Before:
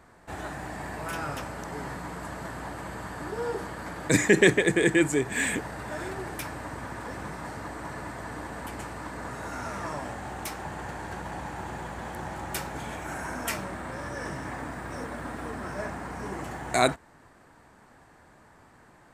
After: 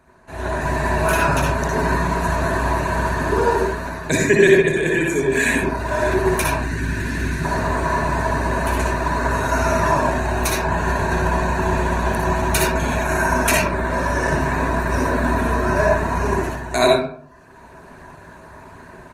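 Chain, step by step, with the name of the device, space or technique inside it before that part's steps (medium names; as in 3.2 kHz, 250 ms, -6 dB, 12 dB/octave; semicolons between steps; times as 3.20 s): 6.54–7.45 s: high-order bell 750 Hz -14.5 dB; reverb removal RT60 0.67 s; rippled EQ curve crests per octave 1.5, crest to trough 9 dB; speakerphone in a meeting room (reverberation RT60 0.55 s, pre-delay 55 ms, DRR -2 dB; speakerphone echo 130 ms, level -25 dB; level rider gain up to 13.5 dB; trim -1 dB; Opus 20 kbps 48 kHz)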